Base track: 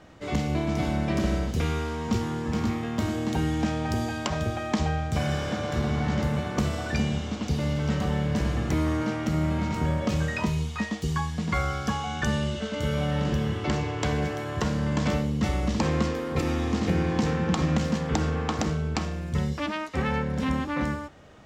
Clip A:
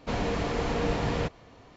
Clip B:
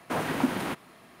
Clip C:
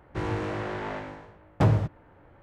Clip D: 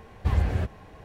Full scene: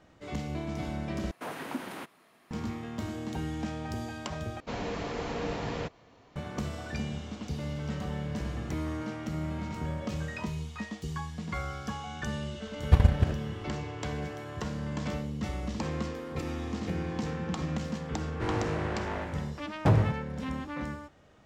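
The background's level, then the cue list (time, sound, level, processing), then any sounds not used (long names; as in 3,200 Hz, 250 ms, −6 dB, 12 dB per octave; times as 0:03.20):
base track −8.5 dB
0:01.31: overwrite with B −8 dB + low-shelf EQ 140 Hz −11 dB
0:04.60: overwrite with A −5 dB + low-shelf EQ 61 Hz −9 dB
0:12.67: mix in D −4 dB + transient designer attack +11 dB, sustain −12 dB
0:18.25: mix in C −1.5 dB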